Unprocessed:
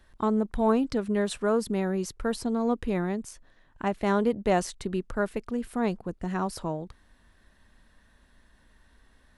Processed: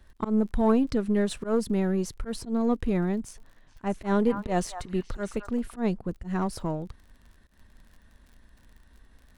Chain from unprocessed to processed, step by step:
gain on one half-wave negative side −3 dB
surface crackle 42 per second −46 dBFS
volume swells 103 ms
low-shelf EQ 280 Hz +7 dB
0:03.16–0:05.76: echo through a band-pass that steps 213 ms, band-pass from 1,100 Hz, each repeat 1.4 octaves, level −4.5 dB

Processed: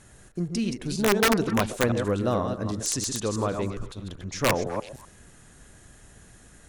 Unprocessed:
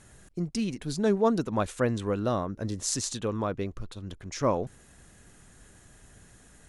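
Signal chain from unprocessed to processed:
delay that plays each chunk backwards 160 ms, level −6 dB
wrap-around overflow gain 15.5 dB
echo through a band-pass that steps 126 ms, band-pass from 500 Hz, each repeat 1.4 octaves, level −11 dB
level +2 dB

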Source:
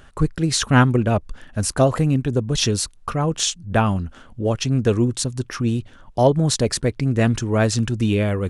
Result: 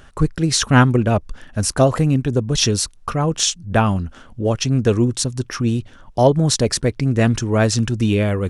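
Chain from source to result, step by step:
parametric band 5,600 Hz +3.5 dB 0.27 octaves
level +2 dB

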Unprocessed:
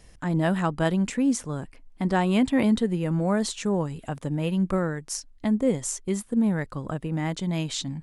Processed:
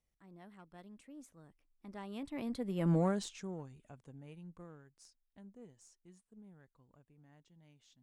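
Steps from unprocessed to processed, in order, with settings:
one-sided soft clipper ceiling −16.5 dBFS
source passing by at 0:02.93, 28 m/s, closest 2.8 metres
level −3 dB

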